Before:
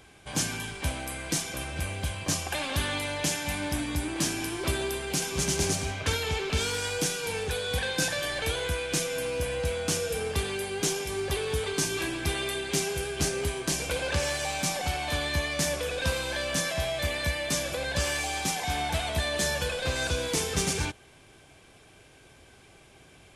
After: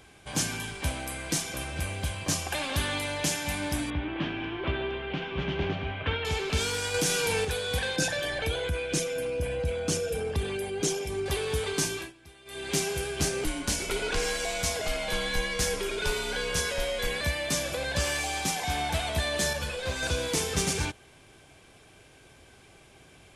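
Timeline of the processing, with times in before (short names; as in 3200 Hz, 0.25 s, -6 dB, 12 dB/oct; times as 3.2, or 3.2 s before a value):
3.9–6.25 Chebyshev low-pass 3200 Hz, order 4
6.94–7.45 fast leveller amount 70%
7.96–11.26 formant sharpening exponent 1.5
11.86–12.72 dip -23 dB, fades 0.27 s
13.44–17.21 frequency shift -98 Hz
19.53–20.03 ensemble effect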